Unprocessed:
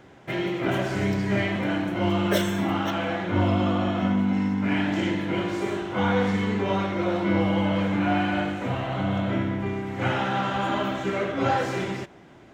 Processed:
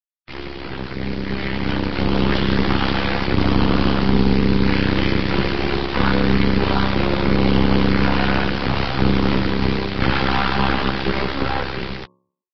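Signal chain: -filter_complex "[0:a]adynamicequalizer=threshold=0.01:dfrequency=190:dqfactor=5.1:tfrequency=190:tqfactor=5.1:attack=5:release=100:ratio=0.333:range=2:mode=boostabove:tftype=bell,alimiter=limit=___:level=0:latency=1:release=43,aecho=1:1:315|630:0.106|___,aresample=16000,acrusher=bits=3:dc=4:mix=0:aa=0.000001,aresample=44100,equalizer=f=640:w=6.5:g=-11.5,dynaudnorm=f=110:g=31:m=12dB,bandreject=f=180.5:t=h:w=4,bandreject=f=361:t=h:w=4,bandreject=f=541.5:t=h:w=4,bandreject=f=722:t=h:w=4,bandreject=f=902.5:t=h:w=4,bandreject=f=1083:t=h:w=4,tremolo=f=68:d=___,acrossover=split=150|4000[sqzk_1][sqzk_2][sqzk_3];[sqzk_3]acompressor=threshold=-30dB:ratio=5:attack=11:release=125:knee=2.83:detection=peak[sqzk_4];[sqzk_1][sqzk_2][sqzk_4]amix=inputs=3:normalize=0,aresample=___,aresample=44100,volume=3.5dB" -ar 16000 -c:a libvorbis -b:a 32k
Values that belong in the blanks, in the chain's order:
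-16dB, 0.0201, 0.889, 11025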